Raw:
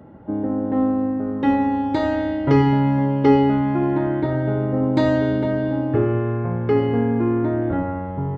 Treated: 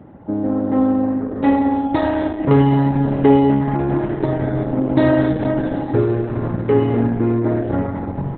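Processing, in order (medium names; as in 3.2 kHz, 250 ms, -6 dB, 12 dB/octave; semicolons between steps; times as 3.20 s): echo that smears into a reverb 926 ms, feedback 58%, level -14 dB; trim +3.5 dB; Opus 8 kbps 48 kHz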